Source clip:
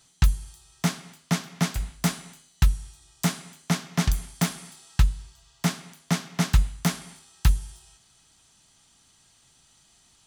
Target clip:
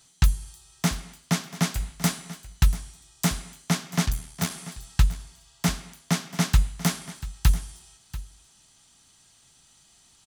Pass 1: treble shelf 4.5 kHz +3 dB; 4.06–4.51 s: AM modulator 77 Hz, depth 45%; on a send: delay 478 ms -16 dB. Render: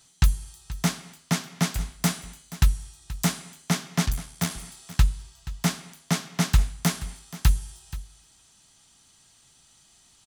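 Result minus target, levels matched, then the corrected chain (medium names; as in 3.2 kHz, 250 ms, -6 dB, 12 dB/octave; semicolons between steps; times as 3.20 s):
echo 210 ms early
treble shelf 4.5 kHz +3 dB; 4.06–4.51 s: AM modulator 77 Hz, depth 45%; on a send: delay 688 ms -16 dB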